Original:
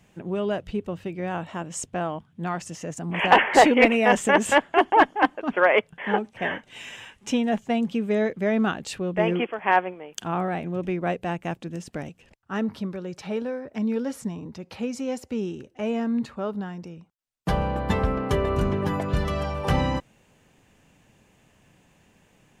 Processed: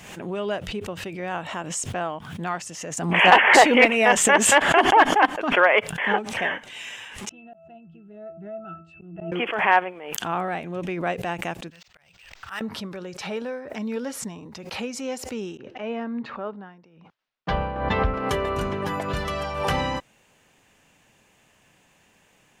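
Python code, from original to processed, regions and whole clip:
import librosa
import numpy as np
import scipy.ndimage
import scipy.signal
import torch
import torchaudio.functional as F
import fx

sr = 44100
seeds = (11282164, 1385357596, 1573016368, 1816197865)

y = fx.chain(x, sr, fx.bass_treble(bass_db=5, treble_db=-1),
    fx.octave_resonator(note='E', decay_s=0.31),
    fx.auto_swell(attack_ms=241.0), at=(7.29, 9.32))
y = fx.chain(y, sr, fx.tone_stack(knobs='10-0-10'),
    fx.auto_swell(attack_ms=313.0),
    fx.resample_linear(factor=4), at=(11.7, 12.61))
y = fx.chain(y, sr, fx.air_absorb(metres=250.0),
    fx.band_widen(depth_pct=100), at=(15.57, 18.14))
y = fx.low_shelf(y, sr, hz=450.0, db=-10.5)
y = fx.pre_swell(y, sr, db_per_s=56.0)
y = y * 10.0 ** (3.5 / 20.0)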